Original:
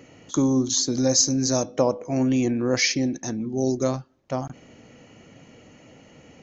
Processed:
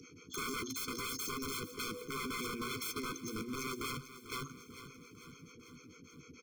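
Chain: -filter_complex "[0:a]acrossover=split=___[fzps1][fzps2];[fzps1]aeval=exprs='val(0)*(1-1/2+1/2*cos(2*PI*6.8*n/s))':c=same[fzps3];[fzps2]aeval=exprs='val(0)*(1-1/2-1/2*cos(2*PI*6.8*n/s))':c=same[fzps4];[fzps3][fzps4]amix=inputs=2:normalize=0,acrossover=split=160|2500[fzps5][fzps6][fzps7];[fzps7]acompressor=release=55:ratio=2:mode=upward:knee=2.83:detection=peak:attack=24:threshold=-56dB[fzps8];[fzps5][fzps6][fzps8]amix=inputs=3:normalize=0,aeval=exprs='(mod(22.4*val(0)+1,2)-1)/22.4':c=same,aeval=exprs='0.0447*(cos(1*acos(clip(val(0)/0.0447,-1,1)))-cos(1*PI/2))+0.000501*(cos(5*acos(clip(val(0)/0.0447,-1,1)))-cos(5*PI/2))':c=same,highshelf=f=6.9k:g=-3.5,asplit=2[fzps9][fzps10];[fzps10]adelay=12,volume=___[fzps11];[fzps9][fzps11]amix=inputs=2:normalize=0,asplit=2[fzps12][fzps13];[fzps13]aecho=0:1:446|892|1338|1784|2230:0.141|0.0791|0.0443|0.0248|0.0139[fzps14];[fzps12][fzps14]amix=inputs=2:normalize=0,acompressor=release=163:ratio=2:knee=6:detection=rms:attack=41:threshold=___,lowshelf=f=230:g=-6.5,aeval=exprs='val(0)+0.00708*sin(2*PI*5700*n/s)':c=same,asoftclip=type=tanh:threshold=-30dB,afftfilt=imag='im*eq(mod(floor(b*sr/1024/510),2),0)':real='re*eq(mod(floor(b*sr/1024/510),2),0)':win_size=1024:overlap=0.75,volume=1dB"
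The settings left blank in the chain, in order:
430, -10.5dB, -36dB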